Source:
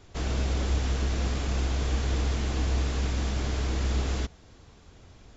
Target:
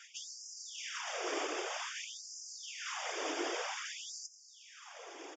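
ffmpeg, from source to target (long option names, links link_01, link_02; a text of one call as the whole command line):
ffmpeg -i in.wav -af "asuperstop=centerf=4100:order=4:qfactor=3.4,areverse,acompressor=threshold=-35dB:ratio=6,areverse,aresample=16000,aresample=44100,afftfilt=real='hypot(re,im)*cos(2*PI*random(0))':imag='hypot(re,im)*sin(2*PI*random(1))':win_size=512:overlap=0.75,afftfilt=real='re*gte(b*sr/1024,260*pow(4900/260,0.5+0.5*sin(2*PI*0.52*pts/sr)))':imag='im*gte(b*sr/1024,260*pow(4900/260,0.5+0.5*sin(2*PI*0.52*pts/sr)))':win_size=1024:overlap=0.75,volume=16dB" out.wav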